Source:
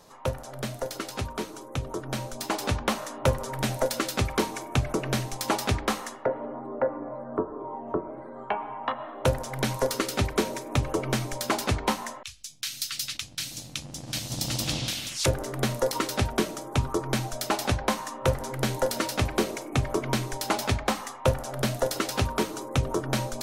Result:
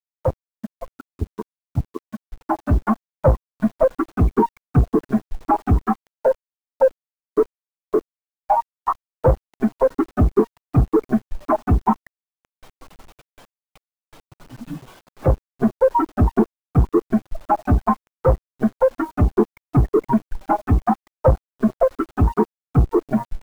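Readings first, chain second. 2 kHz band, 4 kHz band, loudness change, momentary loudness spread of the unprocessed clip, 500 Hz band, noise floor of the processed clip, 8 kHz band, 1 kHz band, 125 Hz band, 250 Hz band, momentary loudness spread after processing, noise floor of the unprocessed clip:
−4.5 dB, below −20 dB, +8.5 dB, 7 LU, +8.5 dB, below −85 dBFS, below −20 dB, +8.0 dB, +8.0 dB, +10.5 dB, 10 LU, −43 dBFS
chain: spectral dynamics exaggerated over time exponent 3
in parallel at −5.5 dB: fuzz pedal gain 50 dB, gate −47 dBFS
on the sum: noise reduction from a noise print of the clip's start 11 dB
low-pass filter 1,100 Hz 24 dB per octave
bit reduction 9 bits
level +5.5 dB

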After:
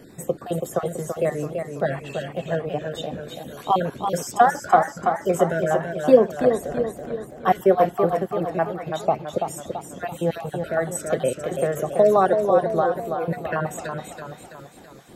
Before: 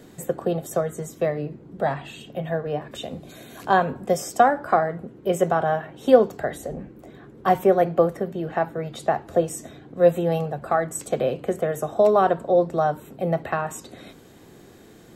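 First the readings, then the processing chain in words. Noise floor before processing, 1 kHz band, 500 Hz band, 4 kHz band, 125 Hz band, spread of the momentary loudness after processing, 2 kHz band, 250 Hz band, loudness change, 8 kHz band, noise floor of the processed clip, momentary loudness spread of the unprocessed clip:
−48 dBFS, +1.0 dB, +0.5 dB, +0.5 dB, 0.0 dB, 15 LU, +0.5 dB, +0.5 dB, 0.0 dB, +1.0 dB, −45 dBFS, 16 LU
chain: time-frequency cells dropped at random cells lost 29%
feedback echo with a swinging delay time 332 ms, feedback 51%, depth 74 cents, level −6 dB
level +1 dB

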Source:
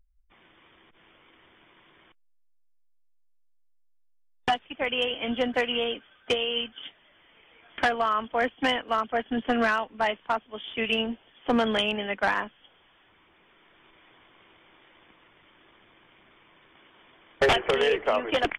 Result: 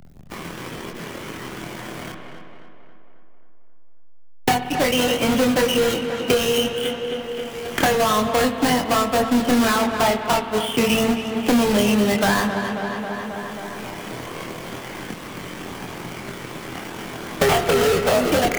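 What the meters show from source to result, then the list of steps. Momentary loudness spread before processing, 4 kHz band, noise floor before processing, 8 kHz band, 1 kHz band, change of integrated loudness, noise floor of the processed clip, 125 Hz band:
10 LU, +5.0 dB, −62 dBFS, +22.5 dB, +6.5 dB, +6.5 dB, −36 dBFS, +16.5 dB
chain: each half-wave held at its own peak
parametric band 160 Hz +9 dB 1.9 octaves
multi-voice chorus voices 4, 0.13 Hz, delay 24 ms, depth 1.4 ms
in parallel at −1.5 dB: brickwall limiter −19.5 dBFS, peak gain reduction 11 dB
on the sum: spring reverb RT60 1.5 s, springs 56 ms, chirp 40 ms, DRR 11.5 dB
leveller curve on the samples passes 1
on a send: tape delay 270 ms, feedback 61%, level −10 dB, low-pass 2,800 Hz
on the sum: multiband upward and downward compressor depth 70%
level −2 dB

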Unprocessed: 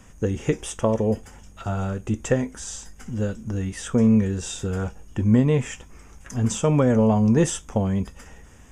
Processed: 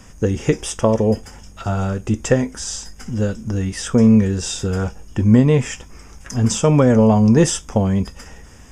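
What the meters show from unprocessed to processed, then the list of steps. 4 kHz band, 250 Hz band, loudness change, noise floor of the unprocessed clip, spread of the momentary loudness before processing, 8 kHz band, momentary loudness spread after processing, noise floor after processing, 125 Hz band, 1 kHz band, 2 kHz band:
+8.5 dB, +5.5 dB, +5.5 dB, −48 dBFS, 16 LU, +6.5 dB, 14 LU, −42 dBFS, +5.5 dB, +5.5 dB, +5.5 dB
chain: parametric band 5,100 Hz +9.5 dB 0.25 octaves
level +5.5 dB

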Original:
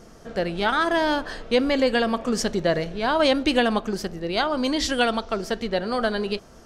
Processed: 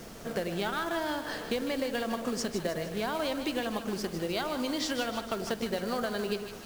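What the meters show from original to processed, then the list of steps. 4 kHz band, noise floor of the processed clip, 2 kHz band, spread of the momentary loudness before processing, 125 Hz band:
−9.0 dB, −44 dBFS, −10.0 dB, 8 LU, −6.5 dB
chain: high-pass filter 110 Hz 24 dB per octave
downward compressor 12 to 1, threshold −30 dBFS, peak gain reduction 15.5 dB
floating-point word with a short mantissa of 2 bits
on a send: echo with a time of its own for lows and highs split 730 Hz, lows 100 ms, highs 154 ms, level −9 dB
on the sum: background noise pink −51 dBFS
level +1 dB

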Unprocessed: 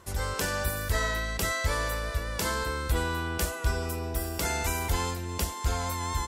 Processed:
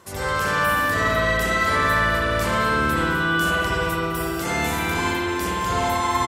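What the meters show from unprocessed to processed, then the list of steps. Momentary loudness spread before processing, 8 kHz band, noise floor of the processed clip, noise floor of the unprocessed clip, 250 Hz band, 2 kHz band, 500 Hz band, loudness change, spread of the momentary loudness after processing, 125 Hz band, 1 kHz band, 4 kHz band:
4 LU, +1.0 dB, −26 dBFS, −37 dBFS, +11.0 dB, +12.0 dB, +9.0 dB, +9.0 dB, 5 LU, +3.5 dB, +12.0 dB, +7.0 dB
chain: high-pass filter 130 Hz 12 dB per octave
brickwall limiter −24.5 dBFS, peak gain reduction 10.5 dB
repeating echo 206 ms, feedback 49%, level −14.5 dB
spring reverb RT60 2 s, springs 54 ms, chirp 50 ms, DRR −9 dB
level +3.5 dB

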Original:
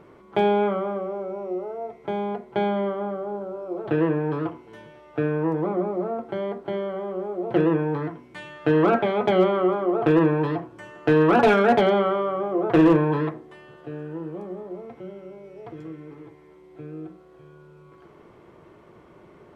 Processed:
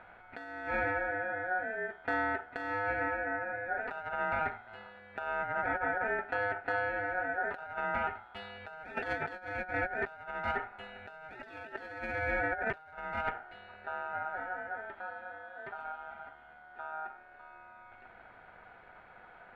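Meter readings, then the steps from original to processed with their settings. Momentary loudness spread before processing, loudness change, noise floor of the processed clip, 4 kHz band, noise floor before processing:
22 LU, −12.5 dB, −56 dBFS, −14.0 dB, −51 dBFS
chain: adaptive Wiener filter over 9 samples
ring modulation 1,100 Hz
compressor whose output falls as the input rises −29 dBFS, ratio −0.5
notch filter 3,100 Hz, Q 20
level −5.5 dB

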